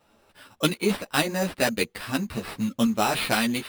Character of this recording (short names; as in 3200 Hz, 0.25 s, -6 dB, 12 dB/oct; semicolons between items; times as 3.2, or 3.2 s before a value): tremolo saw up 2.1 Hz, depth 35%; aliases and images of a low sample rate 6600 Hz, jitter 0%; a shimmering, thickened sound